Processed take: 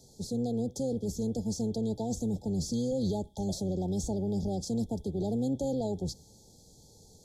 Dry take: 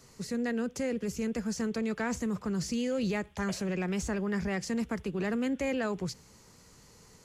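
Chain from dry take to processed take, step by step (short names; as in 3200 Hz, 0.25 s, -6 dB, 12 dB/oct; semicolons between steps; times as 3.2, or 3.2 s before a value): octaver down 1 oct, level -6 dB; brick-wall FIR band-stop 900–3200 Hz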